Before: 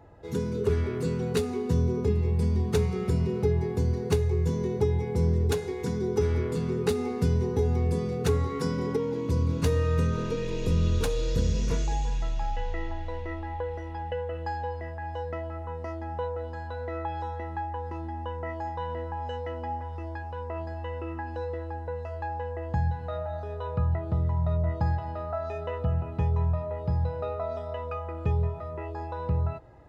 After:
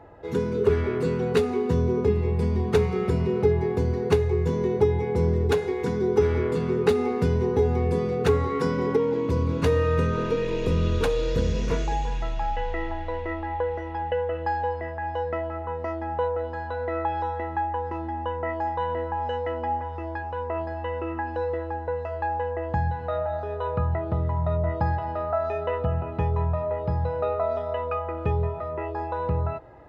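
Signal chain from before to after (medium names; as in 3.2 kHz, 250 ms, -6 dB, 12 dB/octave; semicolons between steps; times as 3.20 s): tone controls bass -7 dB, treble -12 dB; trim +7 dB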